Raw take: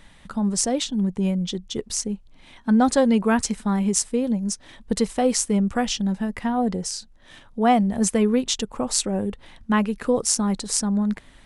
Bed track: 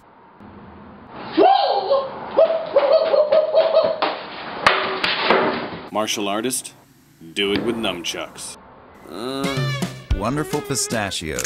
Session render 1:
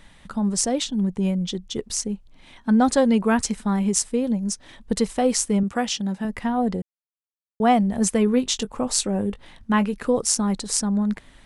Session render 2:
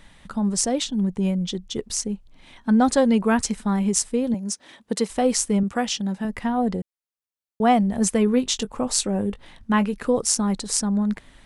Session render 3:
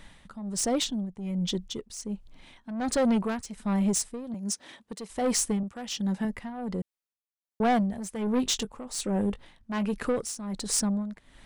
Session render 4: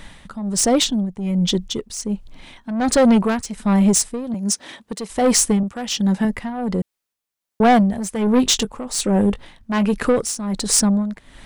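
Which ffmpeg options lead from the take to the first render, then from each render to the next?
-filter_complex "[0:a]asettb=1/sr,asplit=3[a][b][c];[a]atrim=end=5.634[d];[b]atrim=start=5.63:end=6.25,asetpts=PTS-STARTPTS,afade=t=in:d=0.004:c=qsin,afade=t=out:st=0.616:d=0.004:c=qsin,highpass=f=180:p=1[e];[c]atrim=start=6.246[f];[d][e]acrossfade=d=0.004:c1=hsin:c2=qsin[g];[g][f]acrossfade=d=0.004:c1=qsin:c2=hsin,asettb=1/sr,asplit=3[h][i][j];[h]atrim=end=8.254[k];[i]atrim=start=8.25:end=9.94,asetpts=PTS-STARTPTS,afade=t=in:d=0.004:c=qsin,afade=t=out:st=1.686:d=0.004:c=qsin,asplit=2[l][m];[m]adelay=20,volume=-12.5dB[n];[l][n]amix=inputs=2:normalize=0,atrim=end_sample=74529[o];[j]atrim=start=9.936[p];[k][o]acrossfade=d=0.004:c1=hsin:c2=qsin[q];[q][p]acrossfade=d=0.004:c1=qsin:c2=hsin,asplit=3[r][s][t];[r]atrim=end=6.82,asetpts=PTS-STARTPTS,afade=t=out:st=6.816:d=0.004:c=hsin[u];[s]atrim=start=6.82:end=7.6,asetpts=PTS-STARTPTS,volume=0[v];[t]atrim=start=7.6,asetpts=PTS-STARTPTS,afade=t=in:d=0.004:c=hsin[w];[u][v][w]concat=n=3:v=0:a=1"
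-filter_complex "[0:a]asettb=1/sr,asplit=3[a][b][c];[a]atrim=end=4.344[d];[b]atrim=start=4.34:end=5.1,asetpts=PTS-STARTPTS,afade=t=in:d=0.004:c=qsin,afade=t=out:st=0.756:d=0.004:c=qsin,highpass=220[e];[c]atrim=start=5.096[f];[d][e]acrossfade=d=0.004:c1=hsin:c2=qsin[g];[g][f]acrossfade=d=0.004:c1=qsin:c2=hsin"
-af "asoftclip=type=tanh:threshold=-19.5dB,tremolo=f=1.3:d=0.78"
-af "volume=10.5dB"

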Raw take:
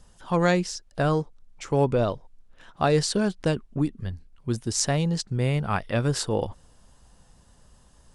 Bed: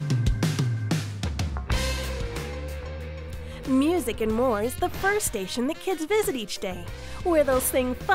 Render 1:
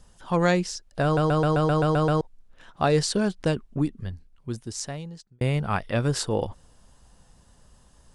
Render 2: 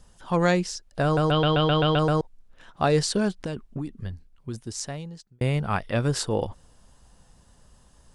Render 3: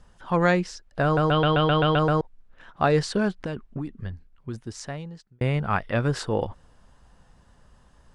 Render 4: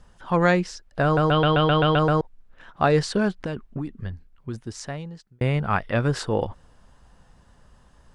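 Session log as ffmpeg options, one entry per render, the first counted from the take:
-filter_complex "[0:a]asplit=11[a][b][c][d][e][f][g][h][i][j][k];[a]atrim=end=1.172[l];[b]atrim=start=1.038:end=1.172[m];[c]atrim=start=1.038:end=1.172[n];[d]atrim=start=1.038:end=1.172[o];[e]atrim=start=1.038:end=1.172[p];[f]atrim=start=1.038:end=1.172[q];[g]atrim=start=1.038:end=1.172[r];[h]atrim=start=1.038:end=1.172[s];[i]atrim=start=1.038:end=1.172[t];[j]atrim=start=2.208:end=5.41,asetpts=PTS-STARTPTS,afade=t=out:st=1.632:d=1.57[u];[k]atrim=start=5.41,asetpts=PTS-STARTPTS,afade=t=in:d=0.004:c=hsin[v];[l][m]acrossfade=d=0.004:c1=hsin:c2=hsin[w];[w][n]acrossfade=d=0.004:c1=hsin:c2=hsin[x];[x][o]acrossfade=d=0.004:c1=hsin:c2=hsin[y];[y][p]acrossfade=d=0.004:c1=hsin:c2=hsin[z];[z][q]acrossfade=d=0.004:c1=hsin:c2=hsin[aa];[aa][r]acrossfade=d=0.004:c1=hsin:c2=hsin[ab];[ab][s]acrossfade=d=0.004:c1=hsin:c2=hsin[ac];[ac][t]acrossfade=d=0.004:c1=hsin:c2=hsin[ad];[u][v]concat=n=2:v=0:a=1[ae];[ad][ae]acrossfade=d=0.004:c1=hsin:c2=hsin"
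-filter_complex "[0:a]asettb=1/sr,asplit=3[a][b][c];[a]atrim=end=1.314[d];[b]atrim=start=1.31:end=1.99,asetpts=PTS-STARTPTS,afade=t=in:d=0.004:c=qsin,afade=t=out:st=0.676:d=0.004:c=qsin,lowpass=f=3.2k:t=q:w=7.8[e];[c]atrim=start=1.986[f];[d][e]acrossfade=d=0.004:c1=hsin:c2=qsin[g];[g][f]acrossfade=d=0.004:c1=qsin:c2=hsin,asettb=1/sr,asplit=3[h][i][j];[h]atrim=end=3.384[k];[i]atrim=start=3.38:end=4.63,asetpts=PTS-STARTPTS,afade=t=in:d=0.004:c=qsin,afade=t=out:st=1.246:d=0.004:c=qsin,acompressor=threshold=-26dB:ratio=10:attack=3.2:release=140:knee=1:detection=peak[l];[j]atrim=start=4.626[m];[k][l]acrossfade=d=0.004:c1=hsin:c2=qsin[n];[n][m]acrossfade=d=0.004:c1=qsin:c2=hsin"
-af "lowpass=f=2.8k:p=1,equalizer=f=1.6k:w=0.9:g=4.5"
-af "volume=1.5dB"

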